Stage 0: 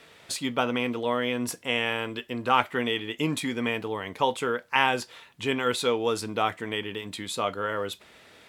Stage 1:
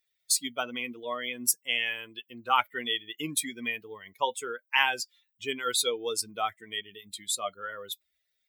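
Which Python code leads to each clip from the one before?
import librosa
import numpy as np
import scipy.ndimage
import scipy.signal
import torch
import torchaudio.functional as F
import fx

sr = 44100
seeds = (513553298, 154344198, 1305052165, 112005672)

y = fx.bin_expand(x, sr, power=2.0)
y = fx.riaa(y, sr, side='recording')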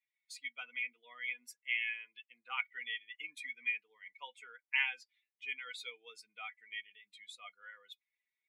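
y = fx.bandpass_q(x, sr, hz=2200.0, q=7.2)
y = y + 0.55 * np.pad(y, (int(4.1 * sr / 1000.0), 0))[:len(y)]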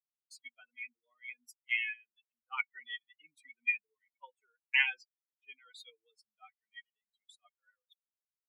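y = fx.bin_expand(x, sr, power=2.0)
y = fx.band_widen(y, sr, depth_pct=100)
y = y * librosa.db_to_amplitude(-1.5)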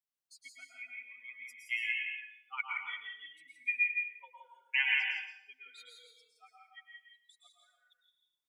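y = x + 10.0 ** (-4.0 / 20.0) * np.pad(x, (int(168 * sr / 1000.0), 0))[:len(x)]
y = fx.rev_plate(y, sr, seeds[0], rt60_s=0.65, hf_ratio=0.95, predelay_ms=100, drr_db=0.5)
y = y * librosa.db_to_amplitude(-3.0)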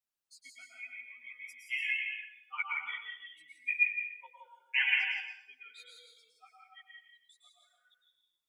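y = x + 10.0 ** (-13.5 / 20.0) * np.pad(x, (int(113 * sr / 1000.0), 0))[:len(x)]
y = fx.ensemble(y, sr)
y = y * librosa.db_to_amplitude(3.5)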